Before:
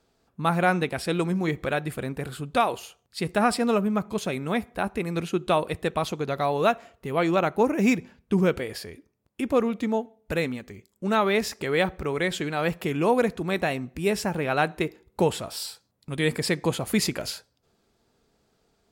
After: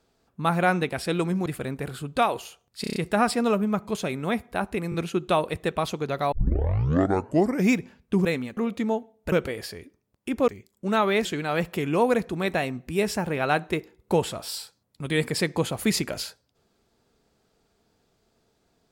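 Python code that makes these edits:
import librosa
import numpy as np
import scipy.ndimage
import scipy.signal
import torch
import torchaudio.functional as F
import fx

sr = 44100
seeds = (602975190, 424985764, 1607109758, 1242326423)

y = fx.edit(x, sr, fx.cut(start_s=1.46, length_s=0.38),
    fx.stutter(start_s=3.19, slice_s=0.03, count=6),
    fx.stutter(start_s=5.13, slice_s=0.02, count=3),
    fx.tape_start(start_s=6.51, length_s=1.4),
    fx.swap(start_s=8.44, length_s=1.16, other_s=10.35, other_length_s=0.32),
    fx.cut(start_s=11.44, length_s=0.89), tone=tone)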